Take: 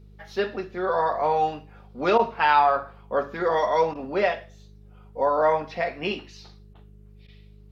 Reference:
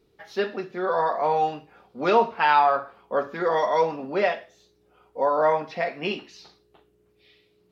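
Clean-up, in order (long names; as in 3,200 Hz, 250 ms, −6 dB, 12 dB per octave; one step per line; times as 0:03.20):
hum removal 50.9 Hz, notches 4
repair the gap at 0:02.18/0:03.94/0:06.74/0:07.27, 11 ms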